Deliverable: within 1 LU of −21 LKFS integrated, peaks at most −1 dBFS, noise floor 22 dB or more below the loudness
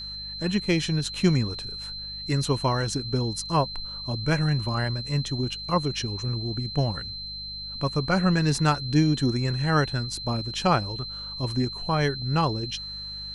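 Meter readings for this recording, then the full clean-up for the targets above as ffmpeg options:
mains hum 50 Hz; hum harmonics up to 200 Hz; level of the hum −42 dBFS; interfering tone 4,100 Hz; level of the tone −34 dBFS; integrated loudness −26.5 LKFS; sample peak −7.5 dBFS; target loudness −21.0 LKFS
→ -af "bandreject=frequency=50:width_type=h:width=4,bandreject=frequency=100:width_type=h:width=4,bandreject=frequency=150:width_type=h:width=4,bandreject=frequency=200:width_type=h:width=4"
-af "bandreject=frequency=4100:width=30"
-af "volume=5.5dB"

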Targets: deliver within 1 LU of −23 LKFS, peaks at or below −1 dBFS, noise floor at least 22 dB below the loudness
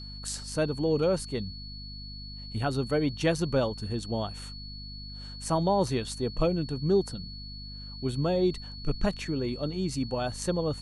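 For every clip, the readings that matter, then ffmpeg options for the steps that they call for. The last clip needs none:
mains hum 50 Hz; hum harmonics up to 250 Hz; level of the hum −41 dBFS; interfering tone 4,400 Hz; level of the tone −43 dBFS; integrated loudness −29.5 LKFS; sample peak −13.5 dBFS; target loudness −23.0 LKFS
→ -af "bandreject=frequency=50:width_type=h:width=4,bandreject=frequency=100:width_type=h:width=4,bandreject=frequency=150:width_type=h:width=4,bandreject=frequency=200:width_type=h:width=4,bandreject=frequency=250:width_type=h:width=4"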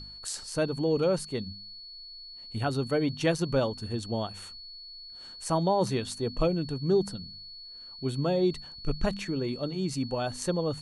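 mains hum none found; interfering tone 4,400 Hz; level of the tone −43 dBFS
→ -af "bandreject=frequency=4400:width=30"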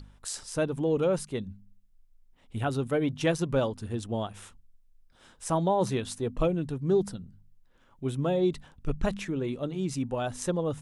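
interfering tone none found; integrated loudness −30.0 LKFS; sample peak −14.5 dBFS; target loudness −23.0 LKFS
→ -af "volume=7dB"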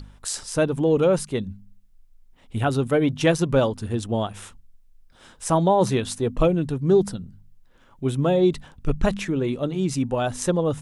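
integrated loudness −23.0 LKFS; sample peak −7.5 dBFS; background noise floor −54 dBFS

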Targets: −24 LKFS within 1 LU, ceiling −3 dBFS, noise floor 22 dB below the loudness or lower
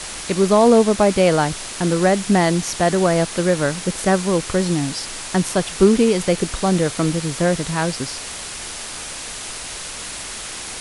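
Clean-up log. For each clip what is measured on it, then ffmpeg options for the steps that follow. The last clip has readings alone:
background noise floor −31 dBFS; target noise floor −42 dBFS; integrated loudness −19.5 LKFS; sample peak −1.5 dBFS; target loudness −24.0 LKFS
→ -af "afftdn=noise_reduction=11:noise_floor=-31"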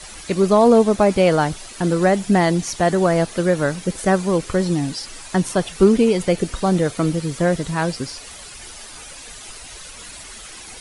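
background noise floor −38 dBFS; target noise floor −41 dBFS
→ -af "afftdn=noise_reduction=6:noise_floor=-38"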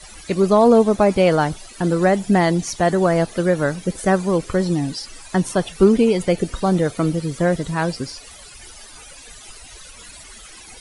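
background noise floor −42 dBFS; integrated loudness −18.5 LKFS; sample peak −2.0 dBFS; target loudness −24.0 LKFS
→ -af "volume=-5.5dB"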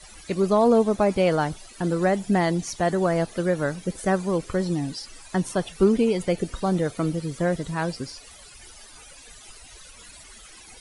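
integrated loudness −24.0 LKFS; sample peak −7.5 dBFS; background noise floor −47 dBFS

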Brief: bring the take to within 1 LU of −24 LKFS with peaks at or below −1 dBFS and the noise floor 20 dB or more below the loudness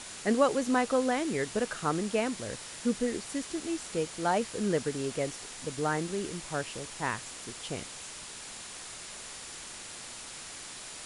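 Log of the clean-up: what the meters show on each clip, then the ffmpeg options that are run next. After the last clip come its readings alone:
interfering tone 7,100 Hz; level of the tone −53 dBFS; background noise floor −44 dBFS; target noise floor −53 dBFS; integrated loudness −33.0 LKFS; sample peak −11.5 dBFS; target loudness −24.0 LKFS
→ -af "bandreject=frequency=7100:width=30"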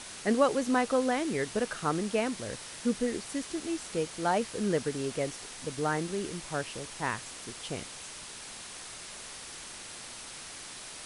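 interfering tone none found; background noise floor −45 dBFS; target noise floor −53 dBFS
→ -af "afftdn=noise_reduction=8:noise_floor=-45"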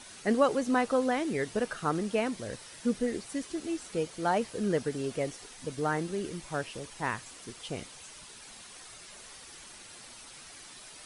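background noise floor −50 dBFS; target noise floor −52 dBFS
→ -af "afftdn=noise_reduction=6:noise_floor=-50"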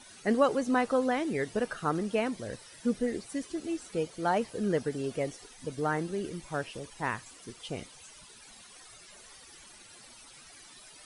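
background noise floor −53 dBFS; integrated loudness −32.0 LKFS; sample peak −12.0 dBFS; target loudness −24.0 LKFS
→ -af "volume=8dB"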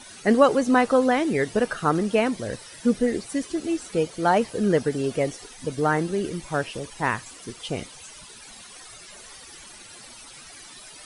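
integrated loudness −24.0 LKFS; sample peak −4.0 dBFS; background noise floor −45 dBFS

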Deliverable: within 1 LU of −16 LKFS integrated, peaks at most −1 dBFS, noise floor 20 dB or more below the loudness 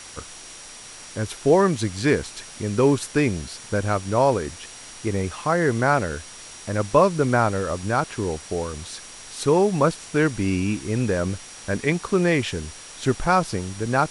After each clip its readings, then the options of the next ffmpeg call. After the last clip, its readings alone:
interfering tone 5,700 Hz; level of the tone −46 dBFS; background noise floor −41 dBFS; target noise floor −43 dBFS; integrated loudness −23.0 LKFS; sample peak −4.0 dBFS; target loudness −16.0 LKFS
→ -af "bandreject=frequency=5700:width=30"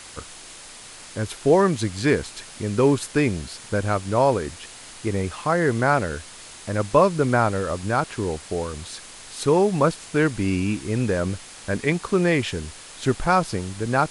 interfering tone none found; background noise floor −42 dBFS; target noise floor −43 dBFS
→ -af "afftdn=noise_reduction=6:noise_floor=-42"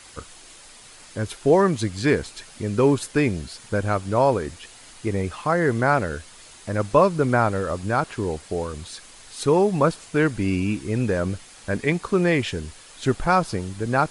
background noise floor −46 dBFS; integrated loudness −23.0 LKFS; sample peak −4.0 dBFS; target loudness −16.0 LKFS
→ -af "volume=7dB,alimiter=limit=-1dB:level=0:latency=1"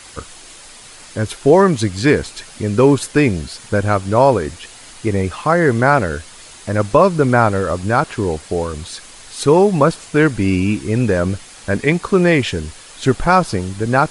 integrated loudness −16.0 LKFS; sample peak −1.0 dBFS; background noise floor −39 dBFS

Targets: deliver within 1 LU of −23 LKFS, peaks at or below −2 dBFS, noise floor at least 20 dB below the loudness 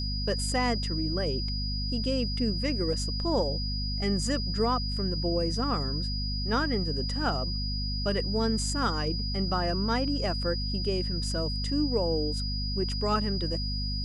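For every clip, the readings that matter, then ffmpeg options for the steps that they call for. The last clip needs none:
mains hum 50 Hz; hum harmonics up to 250 Hz; level of the hum −29 dBFS; interfering tone 4,900 Hz; level of the tone −34 dBFS; integrated loudness −29.0 LKFS; sample peak −14.5 dBFS; target loudness −23.0 LKFS
→ -af "bandreject=frequency=50:width_type=h:width=6,bandreject=frequency=100:width_type=h:width=6,bandreject=frequency=150:width_type=h:width=6,bandreject=frequency=200:width_type=h:width=6,bandreject=frequency=250:width_type=h:width=6"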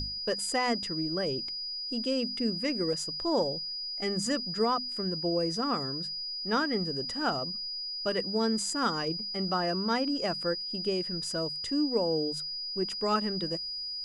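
mains hum none found; interfering tone 4,900 Hz; level of the tone −34 dBFS
→ -af "bandreject=frequency=4900:width=30"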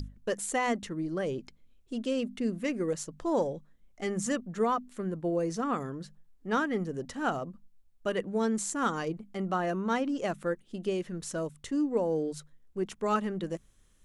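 interfering tone none found; integrated loudness −32.0 LKFS; sample peak −16.5 dBFS; target loudness −23.0 LKFS
→ -af "volume=9dB"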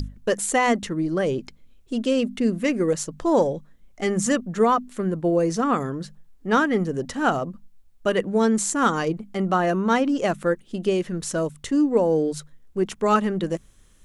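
integrated loudness −23.0 LKFS; sample peak −7.5 dBFS; background noise floor −54 dBFS

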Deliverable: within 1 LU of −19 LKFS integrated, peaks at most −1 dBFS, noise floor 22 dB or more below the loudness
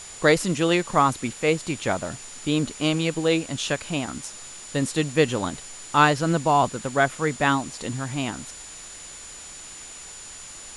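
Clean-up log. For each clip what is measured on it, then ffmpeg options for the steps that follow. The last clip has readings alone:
interfering tone 7,000 Hz; level of the tone −41 dBFS; background noise floor −41 dBFS; target noise floor −46 dBFS; integrated loudness −23.5 LKFS; sample peak −4.5 dBFS; target loudness −19.0 LKFS
→ -af "bandreject=frequency=7000:width=30"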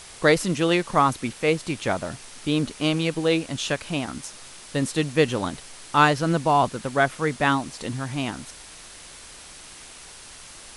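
interfering tone none found; background noise floor −44 dBFS; target noise floor −46 dBFS
→ -af "afftdn=noise_reduction=6:noise_floor=-44"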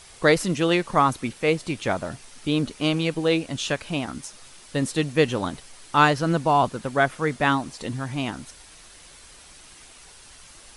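background noise floor −48 dBFS; integrated loudness −24.0 LKFS; sample peak −4.5 dBFS; target loudness −19.0 LKFS
→ -af "volume=5dB,alimiter=limit=-1dB:level=0:latency=1"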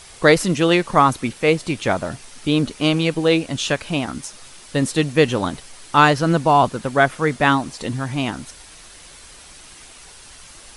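integrated loudness −19.0 LKFS; sample peak −1.0 dBFS; background noise floor −43 dBFS

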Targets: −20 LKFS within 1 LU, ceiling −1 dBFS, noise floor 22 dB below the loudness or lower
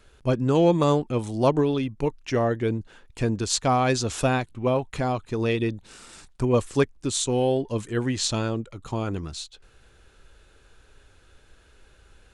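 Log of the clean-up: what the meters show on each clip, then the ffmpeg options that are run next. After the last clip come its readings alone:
integrated loudness −25.0 LKFS; sample peak −7.5 dBFS; target loudness −20.0 LKFS
→ -af "volume=5dB"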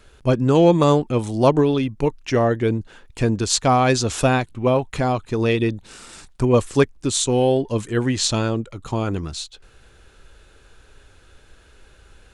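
integrated loudness −20.0 LKFS; sample peak −2.5 dBFS; background noise floor −52 dBFS

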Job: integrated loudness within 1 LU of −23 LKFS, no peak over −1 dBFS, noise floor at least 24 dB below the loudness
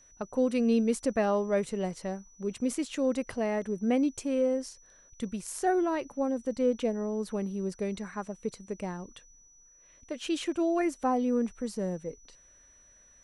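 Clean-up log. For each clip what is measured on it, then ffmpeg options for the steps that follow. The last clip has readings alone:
interfering tone 5,900 Hz; level of the tone −57 dBFS; integrated loudness −30.5 LKFS; sample peak −16.0 dBFS; target loudness −23.0 LKFS
→ -af "bandreject=frequency=5900:width=30"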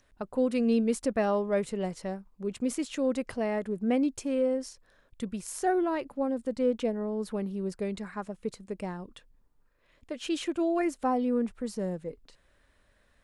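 interfering tone none found; integrated loudness −30.5 LKFS; sample peak −16.5 dBFS; target loudness −23.0 LKFS
→ -af "volume=7.5dB"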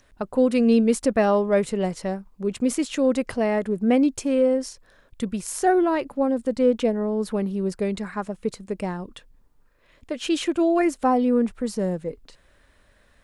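integrated loudness −23.0 LKFS; sample peak −9.0 dBFS; background noise floor −60 dBFS

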